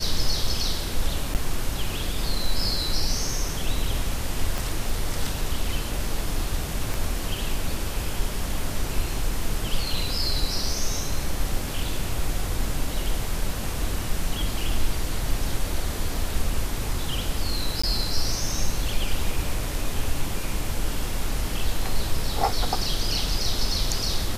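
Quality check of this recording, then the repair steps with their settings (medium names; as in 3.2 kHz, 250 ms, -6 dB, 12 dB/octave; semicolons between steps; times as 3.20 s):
1.34–1.35 s: dropout 8.8 ms
4.58 s: pop
6.94 s: pop
17.82–17.84 s: dropout 15 ms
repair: de-click; interpolate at 1.34 s, 8.8 ms; interpolate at 17.82 s, 15 ms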